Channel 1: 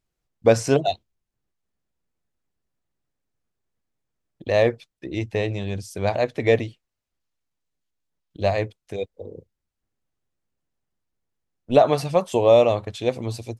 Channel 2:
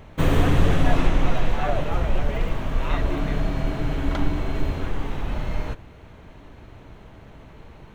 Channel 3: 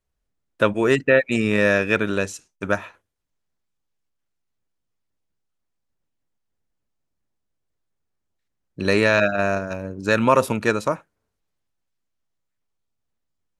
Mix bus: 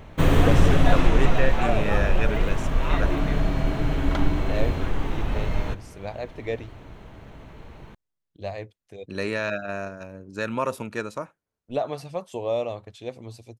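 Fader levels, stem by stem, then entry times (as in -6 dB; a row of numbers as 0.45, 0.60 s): -11.5, +1.0, -10.0 dB; 0.00, 0.00, 0.30 s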